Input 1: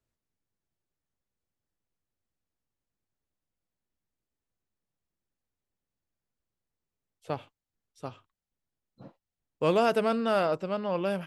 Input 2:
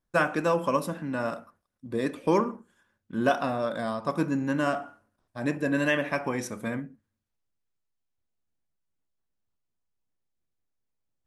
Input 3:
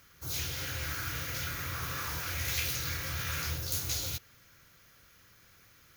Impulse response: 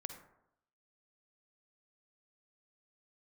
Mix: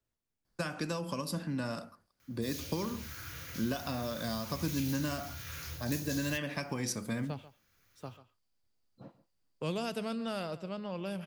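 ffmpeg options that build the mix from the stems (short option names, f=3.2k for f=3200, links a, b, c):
-filter_complex "[0:a]volume=-2dB,asplit=3[a][b][c];[b]volume=-18dB[d];[1:a]equalizer=f=4.7k:w=5.7:g=13.5,acompressor=threshold=-25dB:ratio=6,adelay=450,volume=2dB[e];[2:a]adelay=2200,volume=-8dB[f];[c]apad=whole_len=360225[g];[f][g]sidechaincompress=threshold=-34dB:ratio=8:attack=16:release=1200[h];[d]aecho=0:1:139:1[i];[a][e][h][i]amix=inputs=4:normalize=0,acrossover=split=210|3000[j][k][l];[k]acompressor=threshold=-46dB:ratio=2[m];[j][m][l]amix=inputs=3:normalize=0"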